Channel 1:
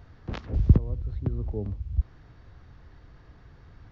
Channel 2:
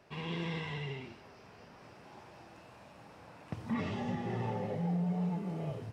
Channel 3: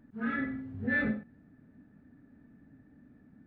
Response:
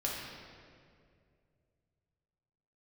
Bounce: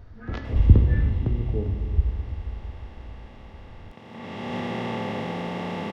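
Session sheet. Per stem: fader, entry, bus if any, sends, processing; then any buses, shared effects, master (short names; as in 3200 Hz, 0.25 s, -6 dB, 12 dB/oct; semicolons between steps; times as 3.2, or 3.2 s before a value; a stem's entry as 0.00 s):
-6.0 dB, 0.00 s, send -4.5 dB, low shelf 490 Hz +8.5 dB
+1.5 dB, 0.45 s, no send, per-bin compression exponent 0.2; auto duck -17 dB, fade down 0.90 s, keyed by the first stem
-5.5 dB, 0.00 s, no send, compressor, threshold -32 dBFS, peak gain reduction 7 dB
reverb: on, RT60 2.3 s, pre-delay 4 ms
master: bell 150 Hz -7 dB 1.1 oct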